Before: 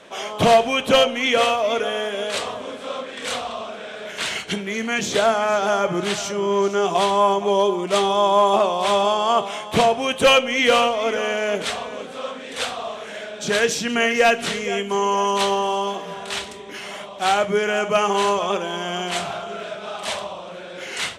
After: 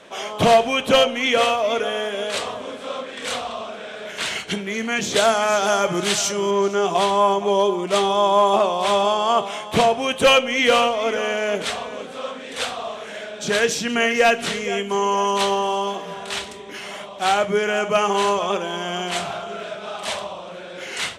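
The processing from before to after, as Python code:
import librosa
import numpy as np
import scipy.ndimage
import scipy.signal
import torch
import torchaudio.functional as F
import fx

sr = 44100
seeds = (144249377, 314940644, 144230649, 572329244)

y = fx.high_shelf(x, sr, hz=3500.0, db=10.0, at=(5.16, 6.51))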